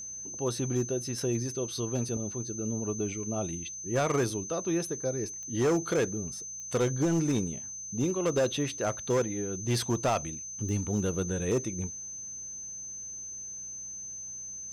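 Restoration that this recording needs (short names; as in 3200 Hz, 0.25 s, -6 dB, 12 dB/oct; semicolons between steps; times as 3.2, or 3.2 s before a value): clip repair -21.5 dBFS; de-click; de-hum 60.2 Hz, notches 3; notch 6200 Hz, Q 30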